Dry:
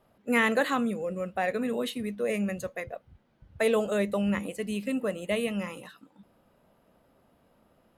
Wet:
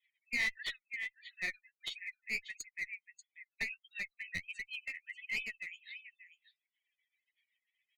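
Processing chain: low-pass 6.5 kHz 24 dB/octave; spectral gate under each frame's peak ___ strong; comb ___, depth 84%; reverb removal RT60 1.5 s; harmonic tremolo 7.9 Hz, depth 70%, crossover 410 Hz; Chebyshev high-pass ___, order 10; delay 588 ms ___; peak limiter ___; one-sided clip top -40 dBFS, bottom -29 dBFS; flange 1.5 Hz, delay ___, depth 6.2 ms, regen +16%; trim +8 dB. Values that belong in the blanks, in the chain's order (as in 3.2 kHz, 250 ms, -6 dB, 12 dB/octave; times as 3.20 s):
-25 dB, 0.9 ms, 1.7 kHz, -14 dB, -27.5 dBFS, 6.1 ms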